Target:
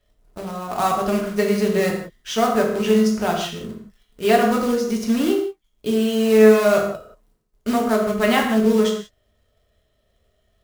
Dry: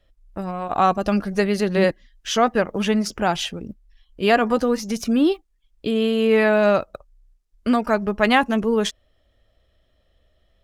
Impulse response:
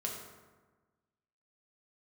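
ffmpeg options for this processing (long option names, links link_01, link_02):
-filter_complex "[0:a]acrusher=bits=3:mode=log:mix=0:aa=0.000001[link_01];[1:a]atrim=start_sample=2205,afade=type=out:start_time=0.24:duration=0.01,atrim=end_sample=11025[link_02];[link_01][link_02]afir=irnorm=-1:irlink=0,volume=-2.5dB"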